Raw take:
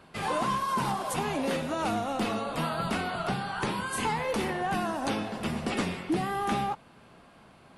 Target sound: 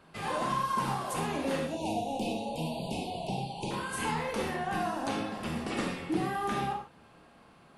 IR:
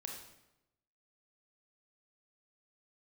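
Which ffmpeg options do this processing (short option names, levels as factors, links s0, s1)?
-filter_complex "[0:a]asettb=1/sr,asplit=3[s0][s1][s2];[s0]atrim=end=1.664[s3];[s1]atrim=start=1.66:end=3.71,asetpts=PTS-STARTPTS,afade=t=in:d=0.004:c=qsin,afade=t=out:st=2.046:d=0.004:c=qsin,asuperstop=centerf=1500:order=12:qfactor=1[s4];[s2]atrim=start=3.706[s5];[s3][s4]acrossfade=d=0.004:c1=hsin:c2=qsin[s6];[s6][s5]acrossfade=d=0.004:c1=qsin:c2=hsin[s7];[1:a]atrim=start_sample=2205,atrim=end_sample=6174[s8];[s7][s8]afir=irnorm=-1:irlink=0"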